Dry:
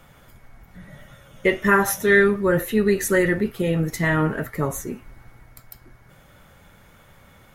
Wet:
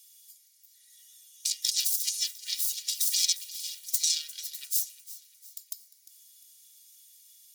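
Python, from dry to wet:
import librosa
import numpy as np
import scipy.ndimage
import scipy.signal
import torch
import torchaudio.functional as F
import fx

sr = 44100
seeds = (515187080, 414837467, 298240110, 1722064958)

y = fx.self_delay(x, sr, depth_ms=0.8)
y = scipy.signal.sosfilt(scipy.signal.cheby2(4, 80, 830.0, 'highpass', fs=sr, output='sos'), y)
y = y + 0.8 * np.pad(y, (int(2.1 * sr / 1000.0), 0))[:len(y)]
y = fx.over_compress(y, sr, threshold_db=-30.0, ratio=-1.0)
y = fx.echo_feedback(y, sr, ms=351, feedback_pct=45, wet_db=-17.0)
y = y * librosa.db_to_amplitude(3.0)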